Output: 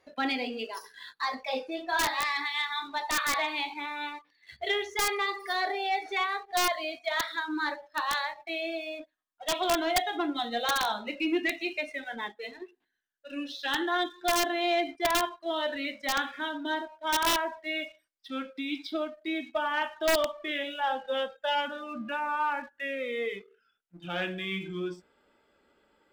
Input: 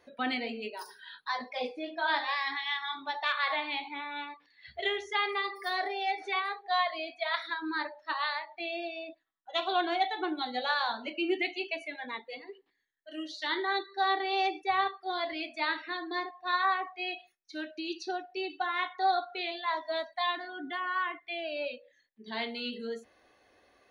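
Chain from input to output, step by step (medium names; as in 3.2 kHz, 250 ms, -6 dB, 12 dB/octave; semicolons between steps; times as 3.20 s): gliding tape speed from 106% -> 77%; waveshaping leveller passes 1; integer overflow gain 18 dB; trim -1 dB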